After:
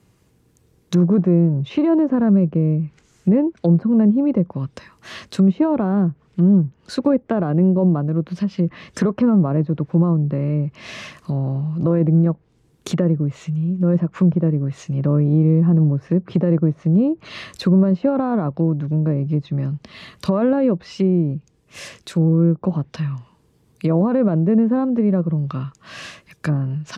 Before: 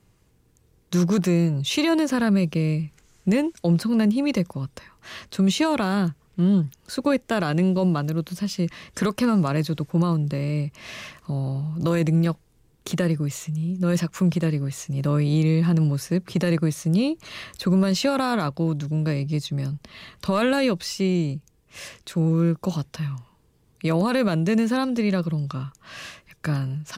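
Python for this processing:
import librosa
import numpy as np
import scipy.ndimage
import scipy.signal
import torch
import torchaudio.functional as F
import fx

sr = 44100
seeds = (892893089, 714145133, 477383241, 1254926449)

y = fx.env_lowpass_down(x, sr, base_hz=820.0, full_db=-20.0)
y = fx.highpass(y, sr, hz=210.0, slope=6)
y = fx.low_shelf(y, sr, hz=310.0, db=8.0)
y = y * librosa.db_to_amplitude(3.0)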